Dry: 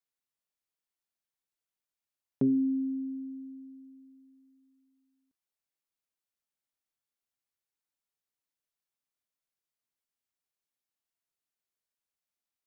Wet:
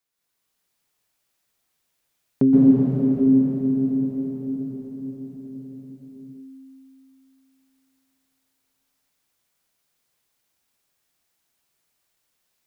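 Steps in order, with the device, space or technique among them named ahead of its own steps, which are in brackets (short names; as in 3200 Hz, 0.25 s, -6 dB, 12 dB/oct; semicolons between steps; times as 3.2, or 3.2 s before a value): cathedral (reverb RT60 6.2 s, pre-delay 0.118 s, DRR -9 dB); gain +8.5 dB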